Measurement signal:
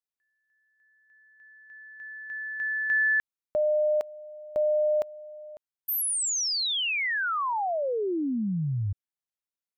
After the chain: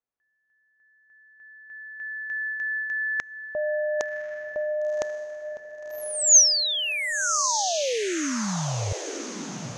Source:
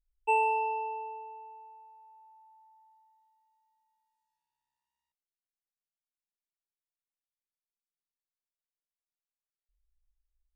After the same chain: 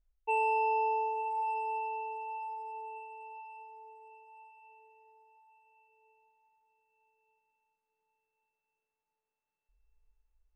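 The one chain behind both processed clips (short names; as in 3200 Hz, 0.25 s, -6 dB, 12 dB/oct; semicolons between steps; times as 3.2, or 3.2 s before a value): reverse; compressor 10:1, threshold -34 dBFS; reverse; bell 520 Hz +2.5 dB; low-pass opened by the level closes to 1500 Hz, open at -32.5 dBFS; synth low-pass 6400 Hz, resonance Q 7.8; diffused feedback echo 1.092 s, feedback 42%, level -8 dB; gain +6.5 dB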